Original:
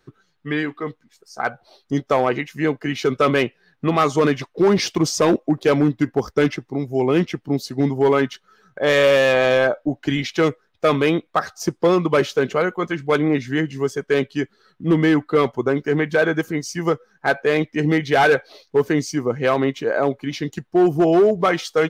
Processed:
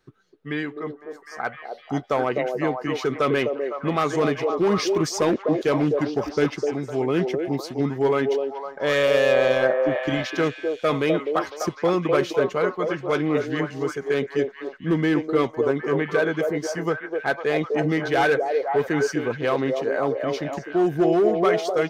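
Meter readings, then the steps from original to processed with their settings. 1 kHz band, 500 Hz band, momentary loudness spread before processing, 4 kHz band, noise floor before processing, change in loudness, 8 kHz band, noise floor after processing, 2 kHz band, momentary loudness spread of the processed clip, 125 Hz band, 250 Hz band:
−3.5 dB, −2.5 dB, 10 LU, −4.5 dB, −66 dBFS, −3.5 dB, −5.0 dB, −45 dBFS, −4.0 dB, 9 LU, −5.0 dB, −4.5 dB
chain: echo through a band-pass that steps 253 ms, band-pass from 500 Hz, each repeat 0.7 octaves, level −1 dB
level −5 dB

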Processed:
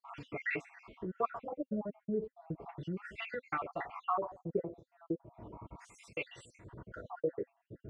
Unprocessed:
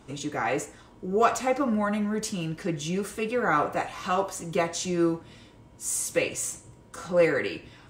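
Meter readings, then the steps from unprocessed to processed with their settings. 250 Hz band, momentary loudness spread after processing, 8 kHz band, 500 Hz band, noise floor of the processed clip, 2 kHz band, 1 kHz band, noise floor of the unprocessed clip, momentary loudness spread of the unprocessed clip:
−13.0 dB, 15 LU, below −30 dB, −13.0 dB, −85 dBFS, −11.0 dB, −11.5 dB, −53 dBFS, 10 LU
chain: time-frequency cells dropped at random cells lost 61%
downward compressor 2.5 to 1, threshold −49 dBFS, peak gain reduction 20.5 dB
notch comb filter 260 Hz
auto-filter low-pass sine 0.36 Hz 410–2,600 Hz
level +6 dB

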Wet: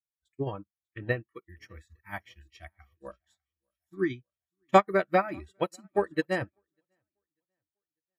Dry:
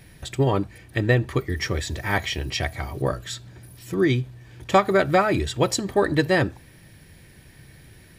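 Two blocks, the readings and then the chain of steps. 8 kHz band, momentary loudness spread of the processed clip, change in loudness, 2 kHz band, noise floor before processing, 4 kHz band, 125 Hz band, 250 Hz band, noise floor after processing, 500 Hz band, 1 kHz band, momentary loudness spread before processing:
below −20 dB, 21 LU, −5.5 dB, −9.0 dB, −50 dBFS, −16.5 dB, −15.0 dB, −9.5 dB, below −85 dBFS, −7.0 dB, −4.5 dB, 11 LU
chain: noise reduction from a noise print of the clip's start 24 dB
dynamic equaliser 4,800 Hz, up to −7 dB, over −46 dBFS, Q 1.7
on a send: repeating echo 596 ms, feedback 45%, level −19.5 dB
on the sum: expander for the loud parts 2.5 to 1, over −40 dBFS

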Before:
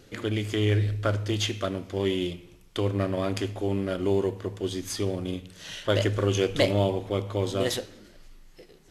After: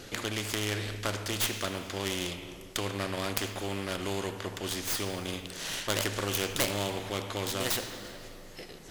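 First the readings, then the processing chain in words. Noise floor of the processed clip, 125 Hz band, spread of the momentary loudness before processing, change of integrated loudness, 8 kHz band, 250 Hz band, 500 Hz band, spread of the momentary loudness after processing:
−47 dBFS, −10.0 dB, 9 LU, −4.5 dB, +5.0 dB, −7.5 dB, −8.5 dB, 9 LU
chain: stylus tracing distortion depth 0.19 ms
dense smooth reverb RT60 2.5 s, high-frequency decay 0.7×, DRR 18.5 dB
every bin compressed towards the loudest bin 2 to 1

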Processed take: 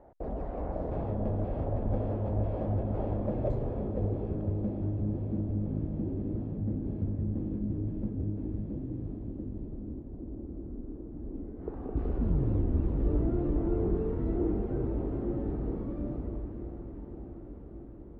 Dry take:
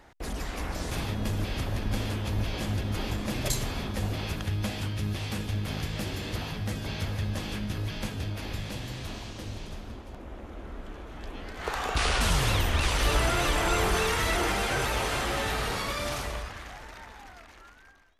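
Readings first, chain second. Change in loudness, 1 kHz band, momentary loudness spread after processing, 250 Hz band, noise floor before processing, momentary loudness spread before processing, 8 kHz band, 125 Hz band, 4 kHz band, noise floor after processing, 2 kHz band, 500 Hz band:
−3.5 dB, −13.0 dB, 12 LU, +3.0 dB, −50 dBFS, 17 LU, below −40 dB, −0.5 dB, below −35 dB, −44 dBFS, below −25 dB, −1.0 dB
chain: low-pass filter sweep 620 Hz → 310 Hz, 0:03.16–0:05.14
feedback delay with all-pass diffusion 560 ms, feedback 76%, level −12.5 dB
level −2 dB

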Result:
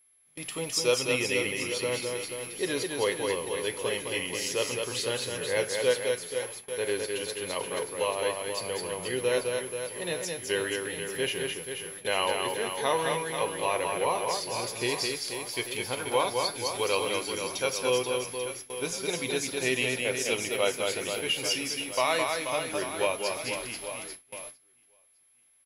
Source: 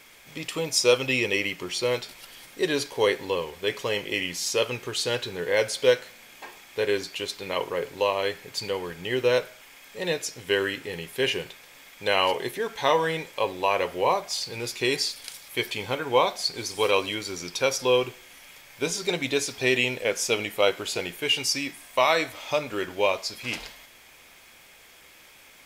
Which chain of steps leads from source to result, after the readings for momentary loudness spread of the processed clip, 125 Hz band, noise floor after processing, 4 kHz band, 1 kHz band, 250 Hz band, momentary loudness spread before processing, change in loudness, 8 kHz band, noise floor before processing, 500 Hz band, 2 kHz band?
7 LU, −3.5 dB, −63 dBFS, −3.5 dB, −3.5 dB, −3.5 dB, 10 LU, −3.5 dB, +0.5 dB, −52 dBFS, −3.5 dB, −3.5 dB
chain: reverse bouncing-ball delay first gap 210 ms, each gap 1.3×, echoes 5
steady tone 11,000 Hz −35 dBFS
noise gate with hold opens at −24 dBFS
level −5.5 dB

